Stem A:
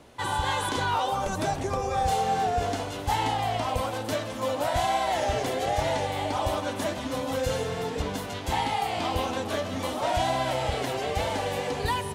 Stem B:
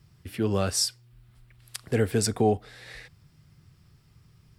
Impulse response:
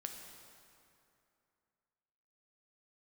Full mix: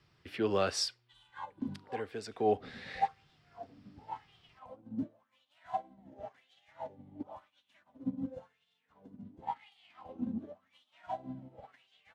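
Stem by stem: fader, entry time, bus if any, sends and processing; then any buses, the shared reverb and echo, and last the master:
+2.0 dB, 0.90 s, no send, wah 0.93 Hz 220–3400 Hz, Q 4; resonant low shelf 280 Hz +10 dB, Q 1.5; upward expander 2.5:1, over -49 dBFS
0.81 s -1 dB -> 1.37 s -12.5 dB -> 2.33 s -12.5 dB -> 2.53 s -1 dB, 0.00 s, no send, three-band isolator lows -14 dB, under 290 Hz, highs -24 dB, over 4600 Hz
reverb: off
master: high shelf 4500 Hz +4.5 dB

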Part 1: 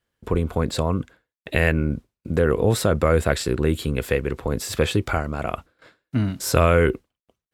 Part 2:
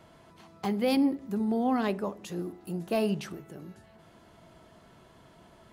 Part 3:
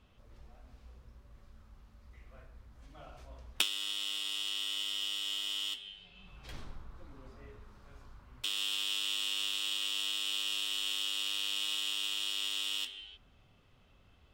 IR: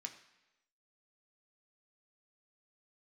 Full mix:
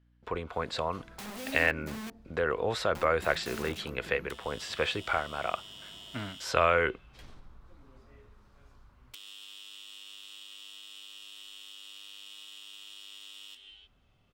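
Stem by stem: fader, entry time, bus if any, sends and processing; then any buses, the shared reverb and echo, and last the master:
-3.0 dB, 0.00 s, no bus, send -20.5 dB, three-band isolator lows -16 dB, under 550 Hz, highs -22 dB, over 5200 Hz; hum 60 Hz, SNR 33 dB
-1.0 dB, 0.55 s, muted 2.1–2.95, bus A, send -10.5 dB, dry
-4.0 dB, 0.70 s, bus A, no send, compressor 20:1, threshold -38 dBFS, peak gain reduction 15 dB
bus A: 0.0 dB, wrapped overs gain 32.5 dB; compressor, threshold -43 dBFS, peak gain reduction 8 dB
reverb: on, RT60 1.0 s, pre-delay 3 ms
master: dry

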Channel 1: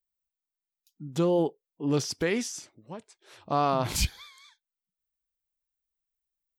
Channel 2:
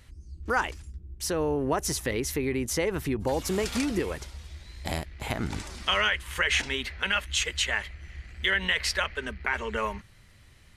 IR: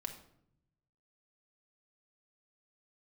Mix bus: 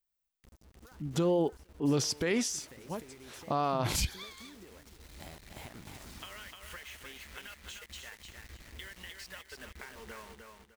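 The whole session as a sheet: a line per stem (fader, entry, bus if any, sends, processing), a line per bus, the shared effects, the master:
+2.0 dB, 0.00 s, no send, no echo send, dry
-9.5 dB, 0.35 s, no send, echo send -5 dB, compressor 12:1, threshold -35 dBFS, peak gain reduction 15 dB; bit-crush 7-bit; auto duck -24 dB, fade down 1.90 s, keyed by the first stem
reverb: off
echo: feedback echo 0.303 s, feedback 28%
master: limiter -20.5 dBFS, peak gain reduction 8.5 dB

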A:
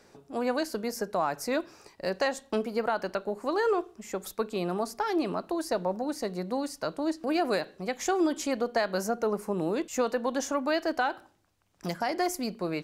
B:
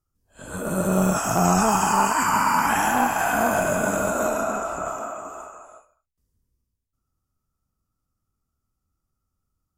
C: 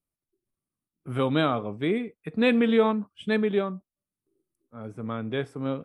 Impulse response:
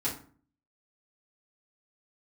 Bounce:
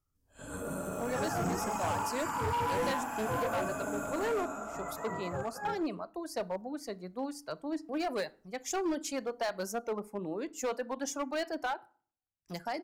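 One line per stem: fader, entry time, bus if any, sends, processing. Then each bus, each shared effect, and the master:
-5.5 dB, 0.65 s, send -20.5 dB, reverb removal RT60 1.4 s; three-band expander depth 70%
-5.0 dB, 0.00 s, send -13.5 dB, compressor 1.5:1, threshold -31 dBFS, peak gain reduction 6 dB; auto duck -12 dB, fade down 1.00 s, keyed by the third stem
-8.0 dB, 0.00 s, no send, spectrum mirrored in octaves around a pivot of 470 Hz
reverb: on, RT60 0.45 s, pre-delay 4 ms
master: hard clip -28 dBFS, distortion -12 dB

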